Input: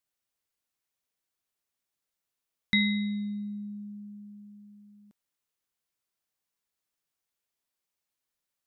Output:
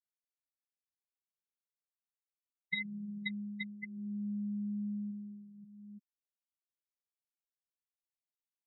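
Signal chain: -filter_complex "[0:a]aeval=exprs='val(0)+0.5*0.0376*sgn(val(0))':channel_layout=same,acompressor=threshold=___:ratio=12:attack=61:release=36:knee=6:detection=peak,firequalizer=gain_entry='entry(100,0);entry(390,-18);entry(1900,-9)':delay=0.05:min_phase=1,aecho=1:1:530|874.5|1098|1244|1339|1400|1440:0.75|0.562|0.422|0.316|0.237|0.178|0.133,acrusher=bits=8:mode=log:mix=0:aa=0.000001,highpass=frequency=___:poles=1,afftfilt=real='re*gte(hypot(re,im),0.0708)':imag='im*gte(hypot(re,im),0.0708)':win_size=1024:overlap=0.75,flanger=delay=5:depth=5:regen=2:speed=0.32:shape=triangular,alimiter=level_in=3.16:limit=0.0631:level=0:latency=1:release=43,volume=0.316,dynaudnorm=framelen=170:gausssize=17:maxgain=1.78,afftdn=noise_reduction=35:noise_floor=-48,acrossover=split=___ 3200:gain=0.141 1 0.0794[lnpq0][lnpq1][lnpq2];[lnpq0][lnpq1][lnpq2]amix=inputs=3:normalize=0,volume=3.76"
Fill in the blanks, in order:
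0.0251, 200, 590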